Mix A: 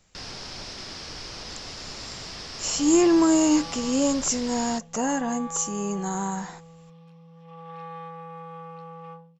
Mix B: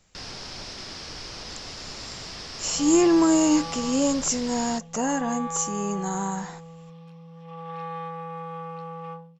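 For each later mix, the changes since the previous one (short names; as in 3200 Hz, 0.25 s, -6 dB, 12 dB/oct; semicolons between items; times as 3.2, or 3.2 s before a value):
second sound +4.5 dB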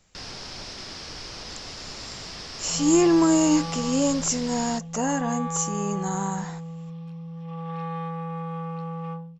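second sound: remove HPF 260 Hz 12 dB/oct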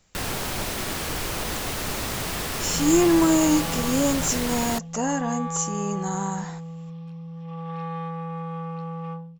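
first sound: remove ladder low-pass 5600 Hz, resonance 70%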